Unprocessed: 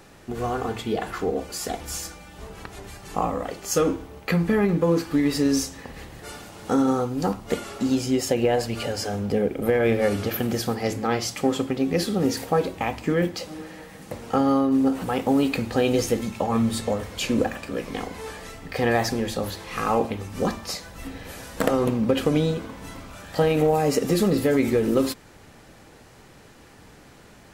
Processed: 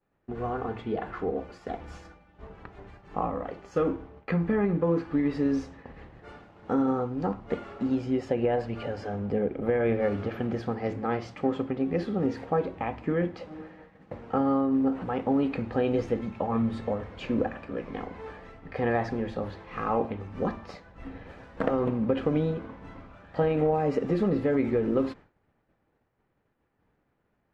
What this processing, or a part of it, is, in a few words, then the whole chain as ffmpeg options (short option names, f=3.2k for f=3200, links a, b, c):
hearing-loss simulation: -af "lowpass=1.9k,agate=range=-33dB:threshold=-37dB:ratio=3:detection=peak,volume=-4.5dB"